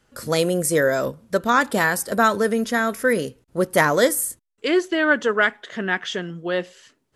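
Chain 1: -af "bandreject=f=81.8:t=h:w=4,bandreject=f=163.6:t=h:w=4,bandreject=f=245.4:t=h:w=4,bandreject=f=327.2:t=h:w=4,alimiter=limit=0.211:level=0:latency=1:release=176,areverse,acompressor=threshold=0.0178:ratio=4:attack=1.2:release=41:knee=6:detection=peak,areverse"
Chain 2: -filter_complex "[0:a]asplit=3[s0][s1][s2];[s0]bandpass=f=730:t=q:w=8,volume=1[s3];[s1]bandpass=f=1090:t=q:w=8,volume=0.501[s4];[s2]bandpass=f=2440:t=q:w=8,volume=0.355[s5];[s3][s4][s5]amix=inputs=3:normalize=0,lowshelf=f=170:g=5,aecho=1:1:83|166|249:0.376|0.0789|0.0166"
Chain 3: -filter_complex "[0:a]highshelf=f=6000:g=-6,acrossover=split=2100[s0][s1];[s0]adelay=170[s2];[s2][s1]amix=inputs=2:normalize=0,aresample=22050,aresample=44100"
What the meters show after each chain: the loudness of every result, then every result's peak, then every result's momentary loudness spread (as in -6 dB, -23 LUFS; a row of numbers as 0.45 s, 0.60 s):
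-37.0 LUFS, -32.0 LUFS, -22.0 LUFS; -25.5 dBFS, -12.5 dBFS, -6.0 dBFS; 5 LU, 13 LU, 9 LU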